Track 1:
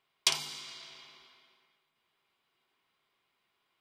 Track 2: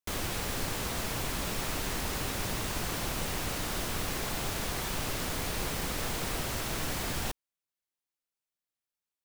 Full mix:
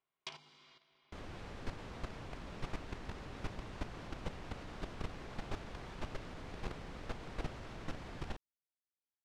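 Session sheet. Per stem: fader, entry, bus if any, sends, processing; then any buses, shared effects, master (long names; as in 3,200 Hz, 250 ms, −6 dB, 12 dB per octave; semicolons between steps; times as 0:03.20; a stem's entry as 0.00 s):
−6.5 dB, 0.00 s, no send, no processing
−5.5 dB, 1.05 s, no send, automatic gain control gain up to 4 dB; high-shelf EQ 3,300 Hz +2.5 dB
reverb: not used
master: output level in coarse steps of 11 dB; head-to-tape spacing loss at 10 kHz 27 dB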